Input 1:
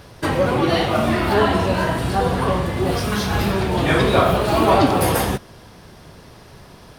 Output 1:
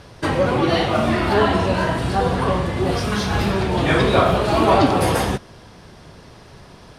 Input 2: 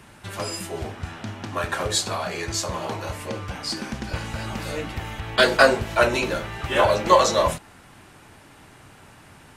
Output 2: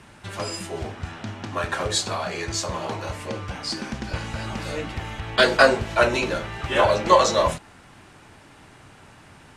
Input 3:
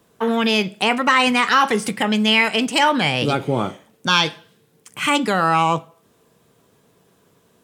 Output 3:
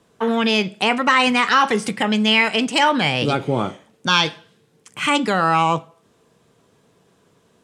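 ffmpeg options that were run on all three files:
ffmpeg -i in.wav -af "lowpass=8900" out.wav

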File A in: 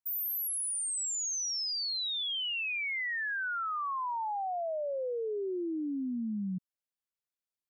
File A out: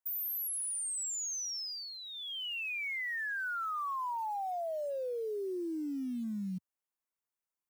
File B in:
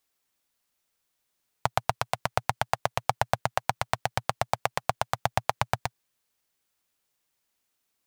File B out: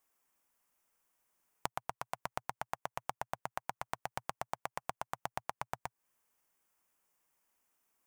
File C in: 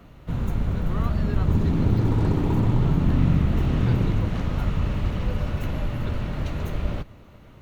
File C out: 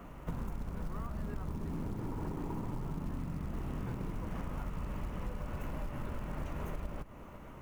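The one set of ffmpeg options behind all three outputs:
ffmpeg -i in.wav -af "equalizer=frequency=100:width_type=o:width=0.67:gain=-9,equalizer=frequency=1000:width_type=o:width=0.67:gain=5,equalizer=frequency=4000:width_type=o:width=0.67:gain=-12,acrusher=bits=7:mode=log:mix=0:aa=0.000001,acompressor=threshold=-34dB:ratio=16" out.wav

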